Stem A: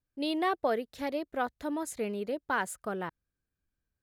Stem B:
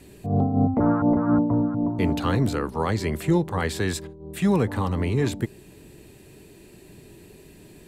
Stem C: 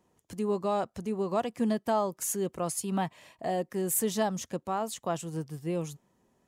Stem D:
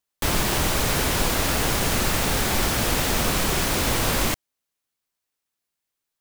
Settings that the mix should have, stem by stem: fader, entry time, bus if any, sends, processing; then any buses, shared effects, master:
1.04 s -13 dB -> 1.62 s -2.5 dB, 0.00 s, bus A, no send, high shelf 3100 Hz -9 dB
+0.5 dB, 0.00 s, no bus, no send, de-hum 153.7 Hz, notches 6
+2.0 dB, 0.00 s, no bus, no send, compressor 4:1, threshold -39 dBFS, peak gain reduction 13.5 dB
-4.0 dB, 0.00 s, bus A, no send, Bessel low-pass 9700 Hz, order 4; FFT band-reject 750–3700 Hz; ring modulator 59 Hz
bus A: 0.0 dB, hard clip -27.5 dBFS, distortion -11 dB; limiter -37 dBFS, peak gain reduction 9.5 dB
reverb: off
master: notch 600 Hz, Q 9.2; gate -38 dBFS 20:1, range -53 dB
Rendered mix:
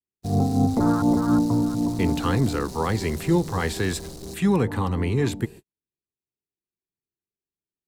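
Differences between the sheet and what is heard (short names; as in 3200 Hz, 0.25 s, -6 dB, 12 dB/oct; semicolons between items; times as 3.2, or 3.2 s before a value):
stem A: muted; stem C: muted; stem D -4.0 dB -> +3.0 dB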